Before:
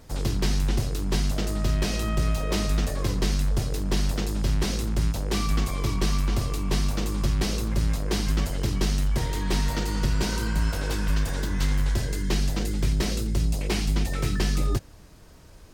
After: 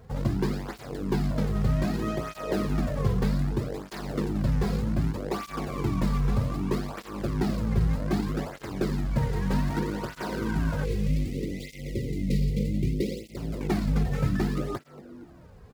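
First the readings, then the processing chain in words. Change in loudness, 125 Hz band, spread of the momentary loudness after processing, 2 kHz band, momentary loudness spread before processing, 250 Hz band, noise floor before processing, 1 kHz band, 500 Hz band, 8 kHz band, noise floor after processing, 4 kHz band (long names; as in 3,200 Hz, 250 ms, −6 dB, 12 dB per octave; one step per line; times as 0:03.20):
−2.5 dB, −1.5 dB, 9 LU, −4.5 dB, 2 LU, +1.5 dB, −47 dBFS, −1.0 dB, +1.0 dB, −13.0 dB, −49 dBFS, −11.0 dB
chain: running median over 15 samples
time-frequency box erased 0:10.85–0:13.37, 570–1,900 Hz
on a send: echo with shifted repeats 230 ms, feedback 42%, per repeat +99 Hz, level −19.5 dB
on the sum: through-zero flanger with one copy inverted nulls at 0.64 Hz, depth 3.5 ms
level +4 dB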